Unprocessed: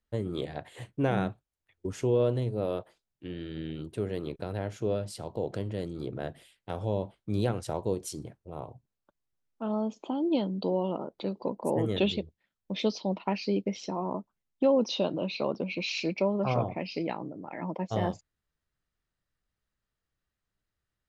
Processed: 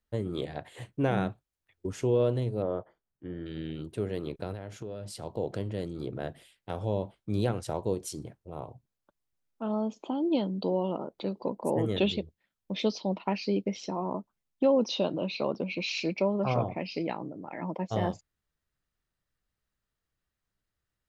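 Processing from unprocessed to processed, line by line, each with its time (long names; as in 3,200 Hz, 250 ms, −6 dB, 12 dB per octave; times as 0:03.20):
0:02.62–0:03.46: Savitzky-Golay smoothing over 41 samples
0:04.53–0:05.22: downward compressor, threshold −35 dBFS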